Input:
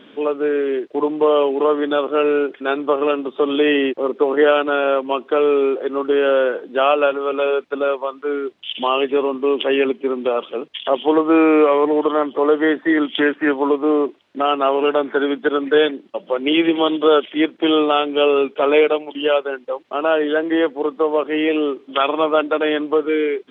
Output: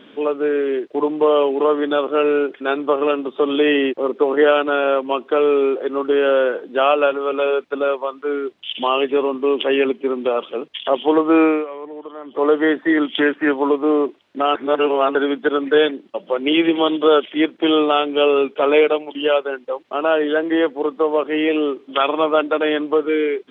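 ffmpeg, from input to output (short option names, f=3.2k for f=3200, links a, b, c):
-filter_complex "[0:a]asplit=5[a][b][c][d][e];[a]atrim=end=11.65,asetpts=PTS-STARTPTS,afade=t=out:st=11.44:d=0.21:silence=0.149624[f];[b]atrim=start=11.65:end=12.23,asetpts=PTS-STARTPTS,volume=-16.5dB[g];[c]atrim=start=12.23:end=14.552,asetpts=PTS-STARTPTS,afade=t=in:d=0.21:silence=0.149624[h];[d]atrim=start=14.548:end=15.152,asetpts=PTS-STARTPTS,areverse[i];[e]atrim=start=15.148[j];[f][g][h]concat=n=3:v=0:a=1[k];[k][i]acrossfade=d=0.004:c1=hsin:c2=hsin[l];[l][j]acrossfade=d=0.004:c1=hsin:c2=hsin"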